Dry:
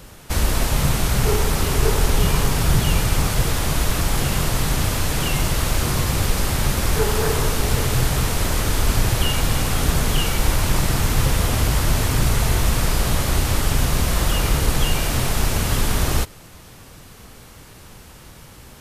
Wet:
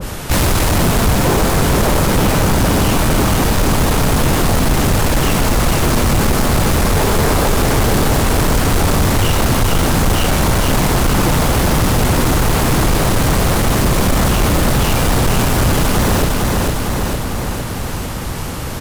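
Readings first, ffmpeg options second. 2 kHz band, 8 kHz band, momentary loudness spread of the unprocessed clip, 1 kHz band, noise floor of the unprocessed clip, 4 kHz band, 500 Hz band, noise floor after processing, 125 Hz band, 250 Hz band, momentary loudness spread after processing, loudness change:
+6.5 dB, +4.5 dB, 2 LU, +9.0 dB, -43 dBFS, +4.5 dB, +9.0 dB, -22 dBFS, +5.5 dB, +10.5 dB, 5 LU, +6.0 dB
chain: -filter_complex "[0:a]aeval=exprs='0.631*sin(PI/2*5.62*val(0)/0.631)':c=same,asplit=2[a][b];[b]aecho=0:1:455|910|1365|1820|2275|2730|3185|3640:0.631|0.372|0.22|0.13|0.0765|0.0451|0.0266|0.0157[c];[a][c]amix=inputs=2:normalize=0,acontrast=89,adynamicequalizer=threshold=0.0631:dfrequency=1600:dqfactor=0.7:tfrequency=1600:tqfactor=0.7:attack=5:release=100:ratio=0.375:range=3.5:mode=cutabove:tftype=highshelf,volume=-8dB"

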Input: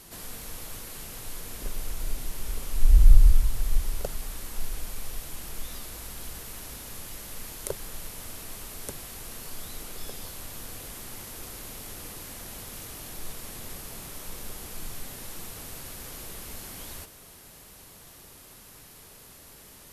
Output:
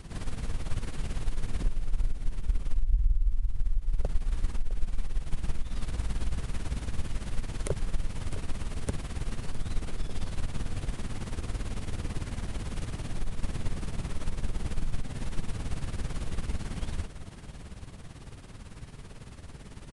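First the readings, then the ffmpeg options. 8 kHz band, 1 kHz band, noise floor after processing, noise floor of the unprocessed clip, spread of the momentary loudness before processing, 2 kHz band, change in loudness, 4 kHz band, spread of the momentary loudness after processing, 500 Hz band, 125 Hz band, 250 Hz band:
-9.5 dB, 0.0 dB, -46 dBFS, -50 dBFS, 16 LU, -1.0 dB, -3.5 dB, -4.5 dB, 12 LU, +0.5 dB, 0.0 dB, +6.0 dB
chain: -filter_complex "[0:a]bass=f=250:g=12,treble=f=4k:g=-9,acompressor=threshold=-23dB:ratio=10,aeval=exprs='0.2*(cos(1*acos(clip(val(0)/0.2,-1,1)))-cos(1*PI/2))+0.0126*(cos(4*acos(clip(val(0)/0.2,-1,1)))-cos(4*PI/2))':c=same,tremolo=f=18:d=0.67,asplit=2[a][b];[b]aecho=0:1:659:0.2[c];[a][c]amix=inputs=2:normalize=0,aresample=22050,aresample=44100,volume=4dB"

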